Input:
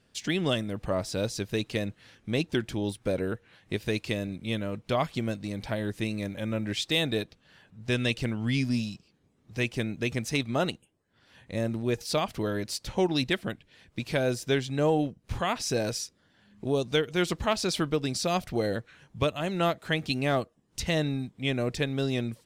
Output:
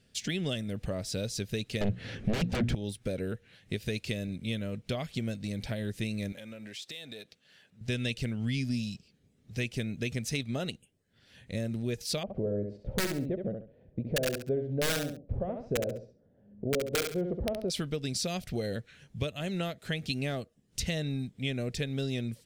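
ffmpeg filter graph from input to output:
-filter_complex "[0:a]asettb=1/sr,asplit=3[a][b][c];[a]atrim=end=1.814[d];[b]atrim=start=1.81:end=2.75,asetpts=PTS-STARTPTS,afade=t=in:d=0.004:c=qsin,afade=t=out:st=0.936:d=0.004:c=qsin,bandreject=f=60:t=h:w=6,bandreject=f=120:t=h:w=6,bandreject=f=180:t=h:w=6,bandreject=f=240:t=h:w=6,aeval=exprs='0.188*sin(PI/2*7.08*val(0)/0.188)':c=same,lowpass=f=1.1k:p=1[e];[c]atrim=start=2.746[f];[d][e]acrossfade=d=0.004:c1=hsin:c2=qsin[g];[g][f]acrossfade=d=0.004:c1=qsin:c2=hsin,asettb=1/sr,asplit=3[h][i][j];[h]atrim=end=6.324[k];[i]atrim=start=6.32:end=7.81,asetpts=PTS-STARTPTS,afade=t=in:d=0.004:c=qsin,afade=t=out:st=1.486:d=0.004:c=qsin,aeval=exprs='if(lt(val(0),0),0.708*val(0),val(0))':c=same,highpass=f=450:p=1,acompressor=threshold=-40dB:ratio=6:attack=3.2:release=140:knee=1:detection=peak[l];[j]atrim=start=7.806[m];[k][l]acrossfade=d=0.004:c1=hsin:c2=qsin[n];[n][m]acrossfade=d=0.004:c1=qsin:c2=hsin,asettb=1/sr,asplit=3[o][p][q];[o]atrim=end=12.234[r];[p]atrim=start=12.23:end=17.7,asetpts=PTS-STARTPTS,afade=t=in:d=0.004:c=qsin,afade=t=out:st=5.466:d=0.004:c=qsin,lowpass=f=570:t=q:w=2.7,aeval=exprs='(mod(4.73*val(0)+1,2)-1)/4.73':c=same,aecho=1:1:68|136|204:0.447|0.107|0.0257,atrim=end_sample=241227[s];[q]atrim=start=17.696[t];[r][s]acrossfade=d=0.004:c1=hsin:c2=qsin[u];[u][t]acrossfade=d=0.004:c1=qsin:c2=hsin,equalizer=f=320:w=5.4:g=-8,acompressor=threshold=-31dB:ratio=2.5,equalizer=f=1k:w=1.3:g=-13,volume=2dB"

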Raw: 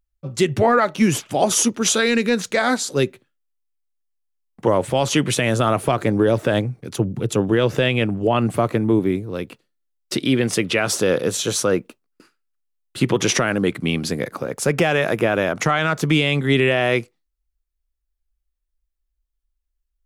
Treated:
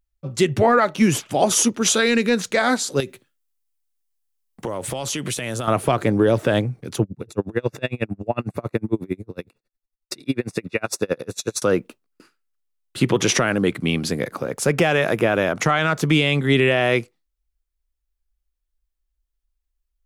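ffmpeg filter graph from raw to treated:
-filter_complex "[0:a]asettb=1/sr,asplit=3[a][b][c];[a]atrim=end=3.004[d];[b]atrim=start=3:end=5.68,asetpts=PTS-STARTPTS,afade=t=in:d=0.004:c=qsin,afade=t=out:st=2.676:d=0.004:c=qsin,highshelf=f=4.6k:g=9.5,acompressor=threshold=-22dB:ratio=12:attack=3.2:release=140:knee=1:detection=peak[e];[c]atrim=start=5.676[f];[d][e]acrossfade=d=0.004:c1=hsin:c2=qsin[g];[g][f]acrossfade=d=0.004:c1=qsin:c2=hsin,asettb=1/sr,asplit=3[h][i][j];[h]atrim=end=7.034[k];[i]atrim=start=7.03:end=11.62,asetpts=PTS-STARTPTS,afade=t=in:d=0.004:c=qsin,afade=t=out:st=4.586:d=0.004:c=qsin,asuperstop=centerf=3100:order=12:qfactor=5.9,aeval=exprs='val(0)*pow(10,-35*(0.5-0.5*cos(2*PI*11*n/s))/20)':c=same[l];[j]atrim=start=11.616[m];[k][l]acrossfade=d=0.004:c1=hsin:c2=qsin[n];[n][m]acrossfade=d=0.004:c1=qsin:c2=hsin"

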